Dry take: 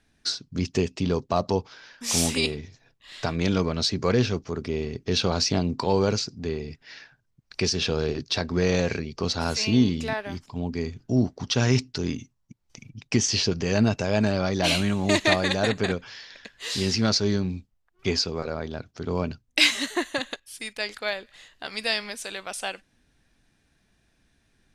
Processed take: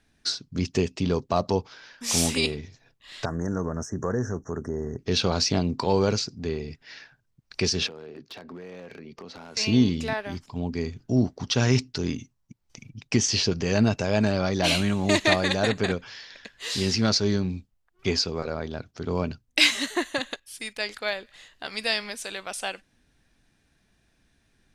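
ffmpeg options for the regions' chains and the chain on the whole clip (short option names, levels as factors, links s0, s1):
-filter_complex "[0:a]asettb=1/sr,asplit=3[s0][s1][s2];[s0]atrim=end=3.254[s3];[s1]atrim=start=3.25:end=4.99,asetpts=PTS-STARTPTS,afade=t=in:d=0.004:c=qsin,afade=t=out:st=1.736:d=0.004:c=qsin,equalizer=f=3900:t=o:w=1:g=6,acompressor=threshold=0.0562:ratio=2:attack=3.2:release=140:knee=1:detection=peak,asuperstop=centerf=3300:order=20:qfactor=0.84[s4];[s2]atrim=start=4.986[s5];[s3][s4]acrossfade=d=0.004:c1=hsin:c2=qsin[s6];[s6][s5]acrossfade=d=0.004:c1=qsin:c2=hsin,asettb=1/sr,asplit=3[s7][s8][s9];[s7]atrim=end=7.874[s10];[s8]atrim=start=7.87:end=9.57,asetpts=PTS-STARTPTS,afade=t=in:d=0.004:c=qsin,afade=t=out:st=1.696:d=0.004:c=qsin,acrossover=split=160 2800:gain=0.0891 1 0.224[s11][s12][s13];[s11][s12][s13]amix=inputs=3:normalize=0,acompressor=threshold=0.0141:ratio=10:attack=3.2:release=140:knee=1:detection=peak,aeval=exprs='0.0224*(abs(mod(val(0)/0.0224+3,4)-2)-1)':c=same[s14];[s9]atrim=start=9.566[s15];[s10][s14]acrossfade=d=0.004:c1=hsin:c2=qsin[s16];[s16][s15]acrossfade=d=0.004:c1=qsin:c2=hsin"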